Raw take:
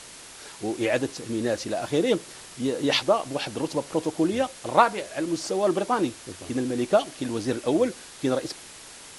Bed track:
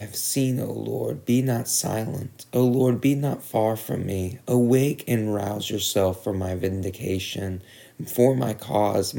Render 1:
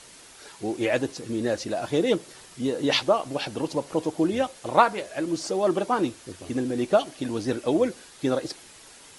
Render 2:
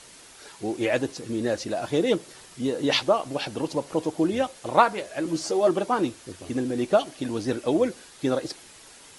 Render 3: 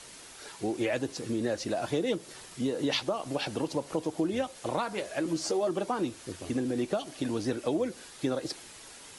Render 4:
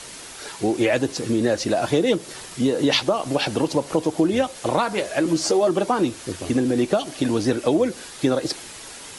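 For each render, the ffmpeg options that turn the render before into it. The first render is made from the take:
-af "afftdn=nr=6:nf=-45"
-filter_complex "[0:a]asettb=1/sr,asplit=3[s0][s1][s2];[s0]atrim=end=5.244[s3];[s1]atrim=start=5.24:end=5.69,asetpts=PTS-STARTPTS,afade=t=in:d=0.004:c=qsin,afade=t=out:st=0.446:d=0.004:c=qsin,asplit=2[s4][s5];[s5]adelay=13,volume=0.562[s6];[s4][s6]amix=inputs=2:normalize=0,atrim=end_sample=19845[s7];[s2]atrim=start=5.686[s8];[s3][s7]acrossfade=d=0.004:c1=hsin:c2=qsin[s9];[s9][s8]acrossfade=d=0.004:c1=qsin:c2=hsin"
-filter_complex "[0:a]acrossover=split=260|3300[s0][s1][s2];[s1]alimiter=limit=0.158:level=0:latency=1:release=210[s3];[s0][s3][s2]amix=inputs=3:normalize=0,acompressor=threshold=0.0398:ratio=2.5"
-af "volume=3.16"

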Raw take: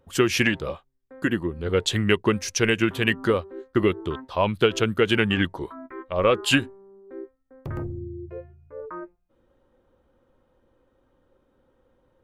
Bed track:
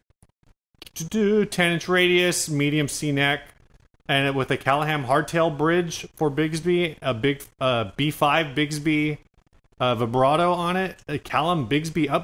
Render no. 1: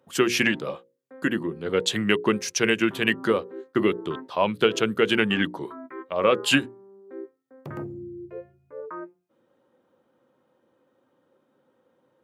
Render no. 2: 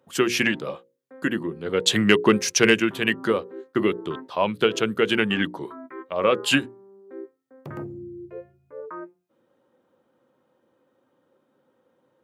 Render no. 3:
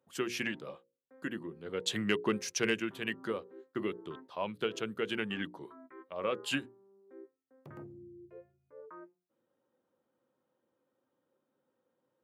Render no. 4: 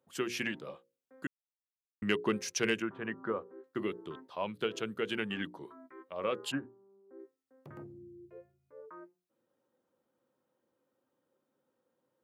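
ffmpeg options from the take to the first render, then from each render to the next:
-af "highpass=f=140:w=0.5412,highpass=f=140:w=1.3066,bandreject=f=60:t=h:w=6,bandreject=f=120:t=h:w=6,bandreject=f=180:t=h:w=6,bandreject=f=240:t=h:w=6,bandreject=f=300:t=h:w=6,bandreject=f=360:t=h:w=6,bandreject=f=420:t=h:w=6,bandreject=f=480:t=h:w=6,bandreject=f=540:t=h:w=6"
-filter_complex "[0:a]asettb=1/sr,asplit=3[s0][s1][s2];[s0]atrim=end=1.864[s3];[s1]atrim=start=1.86:end=2.8,asetpts=PTS-STARTPTS,afade=t=in:d=0.004:c=qsin,afade=t=out:st=0.936:d=0.004:c=qsin,acontrast=33[s4];[s2]atrim=start=2.796[s5];[s3][s4]acrossfade=d=0.004:c1=hsin:c2=qsin[s6];[s6][s5]acrossfade=d=0.004:c1=qsin:c2=hsin"
-af "volume=0.211"
-filter_complex "[0:a]asettb=1/sr,asplit=3[s0][s1][s2];[s0]atrim=end=2.824[s3];[s1]atrim=start=2.82:end=3.64,asetpts=PTS-STARTPTS,afade=t=in:d=0.004:c=qsin,afade=t=out:st=0.816:d=0.004:c=qsin,lowpass=f=1300:t=q:w=1.5[s4];[s2]atrim=start=3.636[s5];[s3][s4]acrossfade=d=0.004:c1=hsin:c2=qsin[s6];[s6][s5]acrossfade=d=0.004:c1=qsin:c2=hsin,asplit=3[s7][s8][s9];[s7]afade=t=out:st=6.5:d=0.02[s10];[s8]lowpass=f=1500:w=0.5412,lowpass=f=1500:w=1.3066,afade=t=in:st=6.5:d=0.02,afade=t=out:st=7.18:d=0.02[s11];[s9]afade=t=in:st=7.18:d=0.02[s12];[s10][s11][s12]amix=inputs=3:normalize=0,asplit=3[s13][s14][s15];[s13]atrim=end=1.27,asetpts=PTS-STARTPTS,afade=t=out:st=1.266:d=0.004:c=hsin[s16];[s14]atrim=start=1.27:end=2.02,asetpts=PTS-STARTPTS,volume=0[s17];[s15]atrim=start=2.02,asetpts=PTS-STARTPTS,afade=t=in:d=0.004:c=hsin[s18];[s16][s17][s18]concat=n=3:v=0:a=1"

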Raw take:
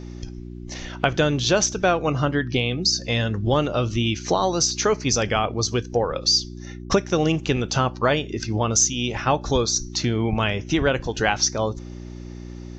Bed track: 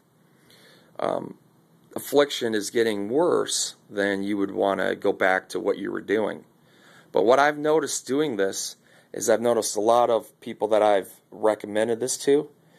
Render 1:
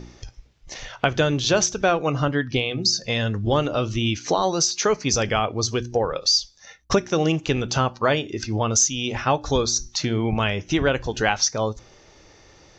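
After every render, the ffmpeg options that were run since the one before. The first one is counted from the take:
-af "bandreject=f=60:t=h:w=4,bandreject=f=120:t=h:w=4,bandreject=f=180:t=h:w=4,bandreject=f=240:t=h:w=4,bandreject=f=300:t=h:w=4,bandreject=f=360:t=h:w=4"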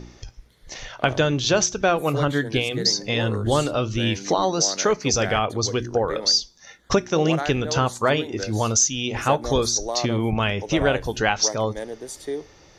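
-filter_complex "[1:a]volume=0.335[s0];[0:a][s0]amix=inputs=2:normalize=0"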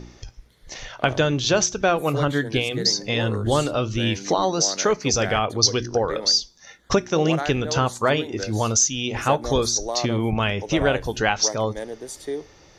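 -filter_complex "[0:a]asettb=1/sr,asplit=3[s0][s1][s2];[s0]atrim=end=5.624[s3];[s1]atrim=start=5.62:end=6.11,asetpts=PTS-STARTPTS,afade=t=in:d=0.004:c=qsin,afade=t=out:st=0.486:d=0.004:c=qsin,lowpass=f=5300:t=q:w=3.8[s4];[s2]atrim=start=6.106[s5];[s3][s4]acrossfade=d=0.004:c1=hsin:c2=qsin[s6];[s6][s5]acrossfade=d=0.004:c1=qsin:c2=hsin"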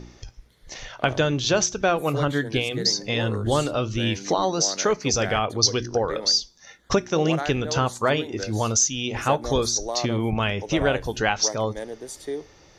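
-af "volume=0.841"

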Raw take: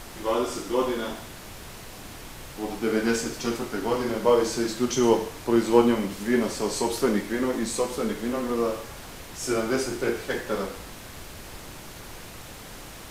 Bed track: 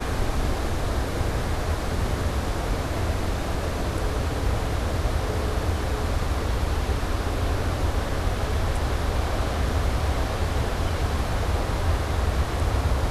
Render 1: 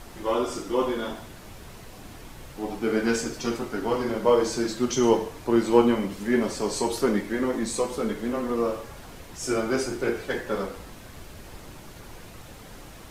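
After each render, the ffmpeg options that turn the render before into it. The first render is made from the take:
-af "afftdn=nr=6:nf=-42"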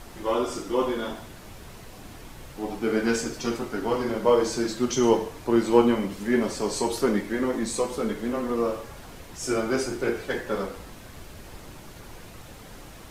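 -af anull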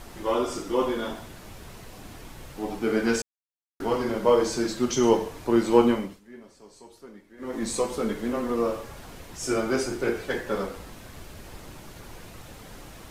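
-filter_complex "[0:a]asplit=5[s0][s1][s2][s3][s4];[s0]atrim=end=3.22,asetpts=PTS-STARTPTS,afade=t=out:st=3.216:d=0.004:c=hsin[s5];[s1]atrim=start=3.22:end=3.8,asetpts=PTS-STARTPTS,volume=0[s6];[s2]atrim=start=3.8:end=6.21,asetpts=PTS-STARTPTS,afade=t=in:d=0.004:c=hsin,afade=t=out:st=2.1:d=0.31:silence=0.0707946[s7];[s3]atrim=start=6.21:end=7.37,asetpts=PTS-STARTPTS,volume=0.0708[s8];[s4]atrim=start=7.37,asetpts=PTS-STARTPTS,afade=t=in:d=0.31:silence=0.0707946[s9];[s5][s6][s7][s8][s9]concat=n=5:v=0:a=1"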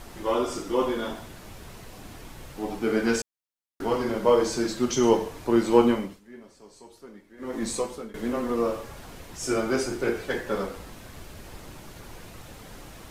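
-filter_complex "[0:a]asplit=2[s0][s1];[s0]atrim=end=8.14,asetpts=PTS-STARTPTS,afade=t=out:st=7.69:d=0.45:silence=0.0841395[s2];[s1]atrim=start=8.14,asetpts=PTS-STARTPTS,afade=t=in:d=0.004:c=hsin:silence=0.0841395[s3];[s2][s3]concat=n=2:v=0:a=1"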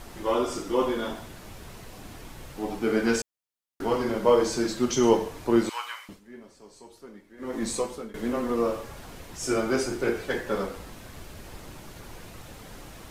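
-filter_complex "[0:a]asettb=1/sr,asplit=3[s0][s1][s2];[s0]atrim=end=5.694[s3];[s1]atrim=start=5.69:end=6.09,asetpts=PTS-STARTPTS,afade=t=in:d=0.004:c=qsin,afade=t=out:st=0.396:d=0.004:c=qsin,highpass=f=1200:w=0.5412,highpass=f=1200:w=1.3066[s4];[s2]atrim=start=6.086[s5];[s3][s4]acrossfade=d=0.004:c1=hsin:c2=qsin[s6];[s6][s5]acrossfade=d=0.004:c1=qsin:c2=hsin"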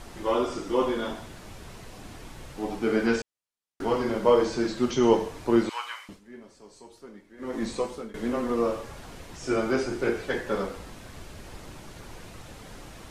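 -filter_complex "[0:a]lowpass=11000,acrossover=split=4700[s0][s1];[s1]acompressor=threshold=0.00355:ratio=4:attack=1:release=60[s2];[s0][s2]amix=inputs=2:normalize=0"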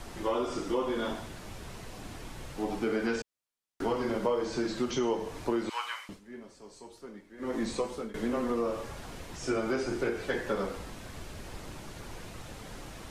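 -filter_complex "[0:a]acrossover=split=290|1600[s0][s1][s2];[s0]alimiter=level_in=1.26:limit=0.0631:level=0:latency=1,volume=0.794[s3];[s3][s1][s2]amix=inputs=3:normalize=0,acompressor=threshold=0.0447:ratio=4"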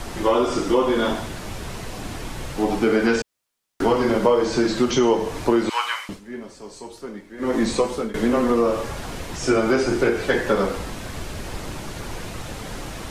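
-af "volume=3.76"

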